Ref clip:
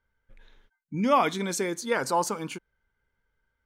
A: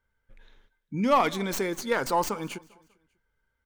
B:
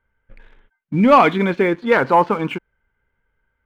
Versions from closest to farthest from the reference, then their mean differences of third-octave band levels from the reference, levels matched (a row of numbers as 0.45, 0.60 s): A, B; 2.5, 5.0 dB